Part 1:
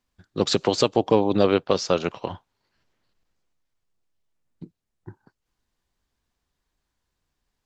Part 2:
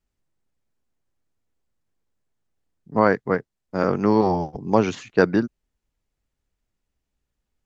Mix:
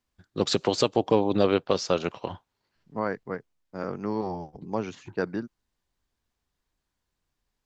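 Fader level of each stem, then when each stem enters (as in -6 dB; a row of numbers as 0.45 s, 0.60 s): -3.0 dB, -11.5 dB; 0.00 s, 0.00 s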